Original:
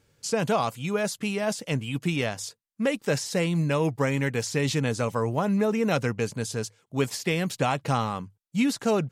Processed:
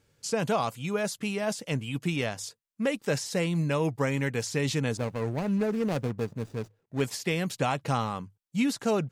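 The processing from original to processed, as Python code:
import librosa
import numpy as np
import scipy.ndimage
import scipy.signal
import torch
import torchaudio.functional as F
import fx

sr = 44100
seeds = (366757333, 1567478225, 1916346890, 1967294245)

y = fx.median_filter(x, sr, points=41, at=(4.97, 7.01))
y = y * librosa.db_to_amplitude(-2.5)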